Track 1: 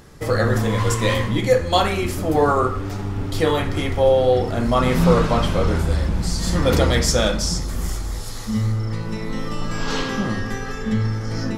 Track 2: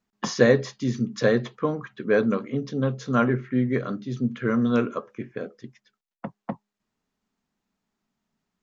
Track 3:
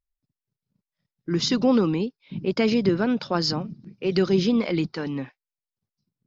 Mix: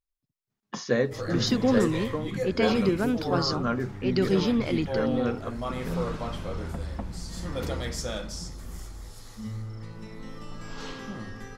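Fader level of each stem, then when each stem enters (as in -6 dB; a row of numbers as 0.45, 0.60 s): -14.5, -7.0, -3.5 dB; 0.90, 0.50, 0.00 s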